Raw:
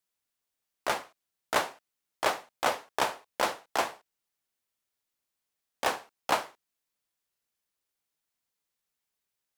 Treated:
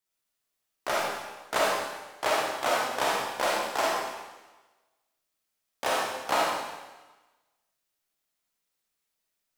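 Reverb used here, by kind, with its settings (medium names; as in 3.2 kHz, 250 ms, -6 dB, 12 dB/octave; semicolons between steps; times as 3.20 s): algorithmic reverb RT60 1.2 s, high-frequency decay 1×, pre-delay 5 ms, DRR -5 dB; trim -2.5 dB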